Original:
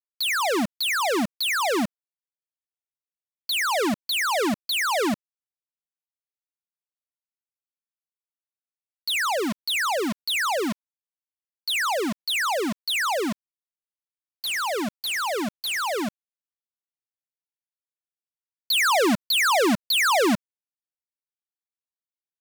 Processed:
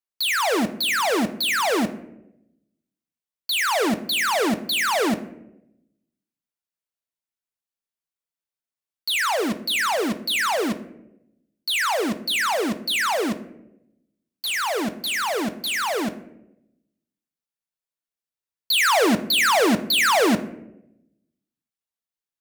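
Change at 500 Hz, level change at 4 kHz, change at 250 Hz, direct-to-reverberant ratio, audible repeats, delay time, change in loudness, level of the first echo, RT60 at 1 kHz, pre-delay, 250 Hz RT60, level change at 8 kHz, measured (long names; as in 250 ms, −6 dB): +2.0 dB, +2.0 dB, +2.5 dB, 9.0 dB, no echo audible, no echo audible, +2.0 dB, no echo audible, 0.70 s, 4 ms, 1.1 s, +2.0 dB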